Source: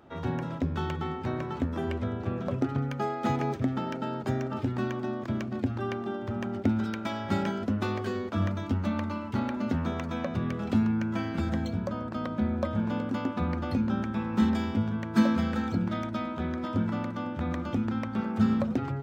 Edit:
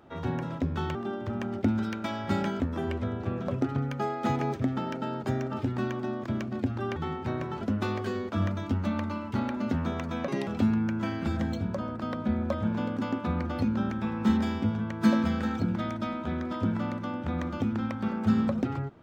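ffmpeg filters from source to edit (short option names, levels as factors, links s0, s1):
-filter_complex "[0:a]asplit=7[s0][s1][s2][s3][s4][s5][s6];[s0]atrim=end=0.952[s7];[s1]atrim=start=5.958:end=7.612[s8];[s2]atrim=start=1.598:end=5.962[s9];[s3]atrim=start=0.948:end=1.602[s10];[s4]atrim=start=7.608:end=10.284[s11];[s5]atrim=start=10.28:end=10.6,asetpts=PTS-STARTPTS,asetrate=72765,aresample=44100[s12];[s6]atrim=start=10.596[s13];[s7][s8]acrossfade=d=0.004:c1=hsin:c2=hsin[s14];[s14][s9]acrossfade=d=0.004:c1=hsin:c2=hsin[s15];[s15][s10]acrossfade=d=0.004:c1=hsin:c2=hsin[s16];[s16][s11]acrossfade=d=0.004:c1=hsin:c2=hsin[s17];[s17][s12]acrossfade=d=0.004:c1=hsin:c2=hsin[s18];[s18][s13]acrossfade=d=0.004:c1=hsin:c2=hsin"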